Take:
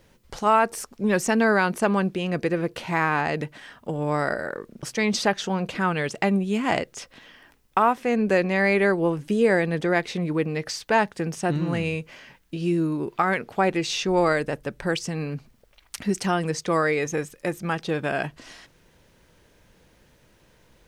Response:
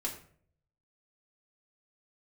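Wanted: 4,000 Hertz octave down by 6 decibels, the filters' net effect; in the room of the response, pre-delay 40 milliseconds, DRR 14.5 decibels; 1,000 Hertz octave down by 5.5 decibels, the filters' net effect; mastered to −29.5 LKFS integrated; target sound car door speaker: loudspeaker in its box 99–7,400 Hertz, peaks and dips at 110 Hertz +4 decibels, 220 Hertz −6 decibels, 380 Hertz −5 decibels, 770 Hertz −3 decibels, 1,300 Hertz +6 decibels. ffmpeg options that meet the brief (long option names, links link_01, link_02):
-filter_complex "[0:a]equalizer=frequency=1000:width_type=o:gain=-9,equalizer=frequency=4000:width_type=o:gain=-7.5,asplit=2[link_01][link_02];[1:a]atrim=start_sample=2205,adelay=40[link_03];[link_02][link_03]afir=irnorm=-1:irlink=0,volume=-16.5dB[link_04];[link_01][link_04]amix=inputs=2:normalize=0,highpass=99,equalizer=frequency=110:width_type=q:width=4:gain=4,equalizer=frequency=220:width_type=q:width=4:gain=-6,equalizer=frequency=380:width_type=q:width=4:gain=-5,equalizer=frequency=770:width_type=q:width=4:gain=-3,equalizer=frequency=1300:width_type=q:width=4:gain=6,lowpass=frequency=7400:width=0.5412,lowpass=frequency=7400:width=1.3066,volume=-1.5dB"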